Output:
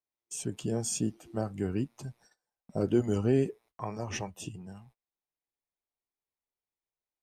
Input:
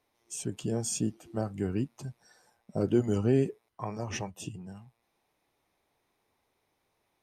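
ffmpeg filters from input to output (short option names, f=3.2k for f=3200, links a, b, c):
-af "agate=range=-25dB:threshold=-57dB:ratio=16:detection=peak,asubboost=boost=2.5:cutoff=64"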